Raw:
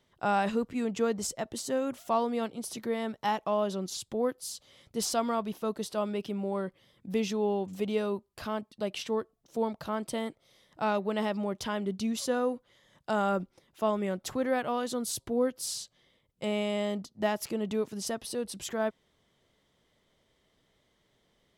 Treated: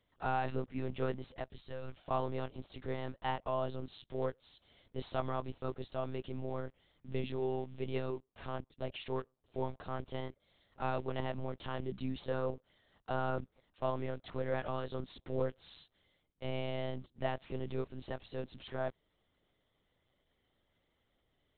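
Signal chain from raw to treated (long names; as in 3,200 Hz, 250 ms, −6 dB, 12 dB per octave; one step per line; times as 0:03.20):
one scale factor per block 5 bits
one-pitch LPC vocoder at 8 kHz 130 Hz
0:01.46–0:01.97: parametric band 420 Hz −9 dB 3 octaves
level −6.5 dB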